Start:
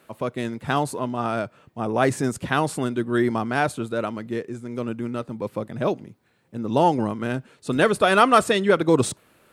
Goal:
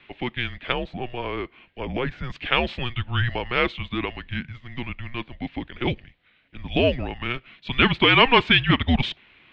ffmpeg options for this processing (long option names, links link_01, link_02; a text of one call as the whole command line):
ffmpeg -i in.wav -filter_complex "[0:a]asettb=1/sr,asplit=3[link_01][link_02][link_03];[link_01]atrim=end=0.724[link_04];[link_02]atrim=start=0.72:end=2.3,asetpts=PTS-STARTPTS,afade=type=in:duration=0.004:curve=qsin,afade=type=out:start_time=1.576:duration=0.004:curve=qsin,acrossover=split=770|1800[link_05][link_06][link_07];[link_05]acompressor=threshold=-23dB:ratio=4[link_08];[link_06]acompressor=threshold=-30dB:ratio=4[link_09];[link_07]acompressor=threshold=-47dB:ratio=4[link_10];[link_08][link_09][link_10]amix=inputs=3:normalize=0[link_11];[link_03]atrim=start=2.296[link_12];[link_04][link_11]acrossfade=duration=0.004:curve1=hsin:curve2=qsin[link_13];[link_13][link_12]acrossfade=duration=0.004:curve1=qsin:curve2=hsin,aexciter=amount=5.1:drive=6.9:freq=2100,highpass=frequency=270:width_type=q:width=0.5412,highpass=frequency=270:width_type=q:width=1.307,lowpass=frequency=3400:width_type=q:width=0.5176,lowpass=frequency=3400:width_type=q:width=0.7071,lowpass=frequency=3400:width_type=q:width=1.932,afreqshift=-250,volume=-1.5dB" out.wav